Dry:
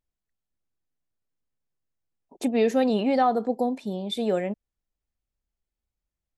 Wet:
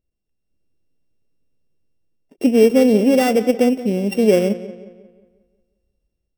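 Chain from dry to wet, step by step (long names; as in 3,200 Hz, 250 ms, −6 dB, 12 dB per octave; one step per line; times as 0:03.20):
samples sorted by size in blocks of 16 samples
low shelf with overshoot 670 Hz +9.5 dB, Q 1.5
automatic gain control gain up to 6.5 dB
feedback echo with a low-pass in the loop 179 ms, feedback 45%, low-pass 4,200 Hz, level −15 dB
every ending faded ahead of time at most 410 dB per second
level −1 dB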